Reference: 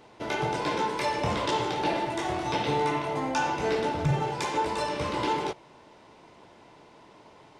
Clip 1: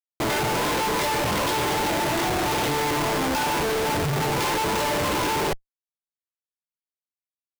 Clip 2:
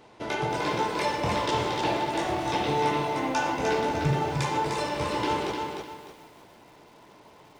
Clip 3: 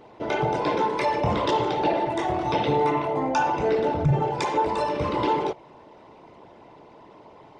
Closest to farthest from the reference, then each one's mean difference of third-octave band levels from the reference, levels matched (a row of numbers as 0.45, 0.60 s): 2, 3, 1; 3.0, 4.0, 9.0 dB